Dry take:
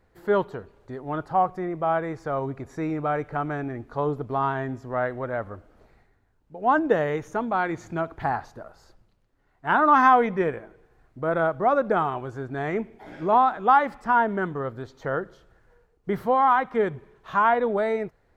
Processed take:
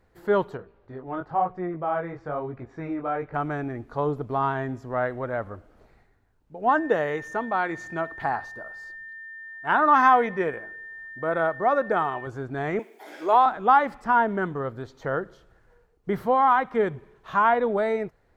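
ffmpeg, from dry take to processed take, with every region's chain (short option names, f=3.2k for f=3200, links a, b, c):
-filter_complex "[0:a]asettb=1/sr,asplit=3[a][b][c];[a]atrim=end=0.574[d];[b]atrim=start=0.57:end=3.34,asetpts=PTS-STARTPTS,afade=t=in:d=0.004:c=qsin,afade=t=out:st=2.766:d=0.004:c=qsin,lowpass=3.1k,flanger=delay=16.5:depth=6.8:speed=1[e];[c]atrim=start=3.336[f];[d][e]acrossfade=d=0.004:c1=hsin:c2=qsin[g];[g][f]acrossfade=d=0.004:c1=qsin:c2=hsin,asettb=1/sr,asplit=3[h][i][j];[h]atrim=end=6.694[k];[i]atrim=start=6.69:end=12.27,asetpts=PTS-STARTPTS,afade=t=in:d=0.004:c=qsin,afade=t=out:st=5.576:d=0.004:c=qsin,lowshelf=f=230:g=-8,bandreject=f=51.85:t=h:w=4,bandreject=f=103.7:t=h:w=4,aeval=exprs='val(0)+0.0126*sin(2*PI*1800*n/s)':c=same[l];[j]atrim=start=12.266[m];[k][l]acrossfade=d=0.004:c1=hsin:c2=qsin[n];[n][m]acrossfade=d=0.004:c1=qsin:c2=hsin,asettb=1/sr,asplit=3[o][p][q];[o]atrim=end=12.794[r];[p]atrim=start=12.79:end=13.46,asetpts=PTS-STARTPTS,afade=t=in:d=0.004:c=qsin,afade=t=out:st=0.666:d=0.004:c=qsin,highpass=f=320:w=0.5412,highpass=f=320:w=1.3066,aemphasis=mode=production:type=75kf[s];[q]atrim=start=13.456[t];[r][s]acrossfade=d=0.004:c1=hsin:c2=qsin[u];[u][t]acrossfade=d=0.004:c1=qsin:c2=hsin"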